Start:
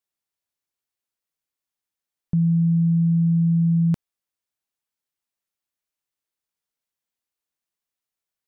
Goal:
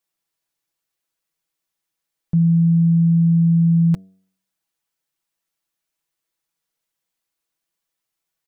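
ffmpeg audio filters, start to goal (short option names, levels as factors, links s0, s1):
-af "alimiter=limit=0.0944:level=0:latency=1:release=20,aecho=1:1:6.1:0.65,bandreject=f=94.76:t=h:w=4,bandreject=f=189.52:t=h:w=4,bandreject=f=284.28:t=h:w=4,bandreject=f=379.04:t=h:w=4,bandreject=f=473.8:t=h:w=4,bandreject=f=568.56:t=h:w=4,bandreject=f=663.32:t=h:w=4,volume=1.78"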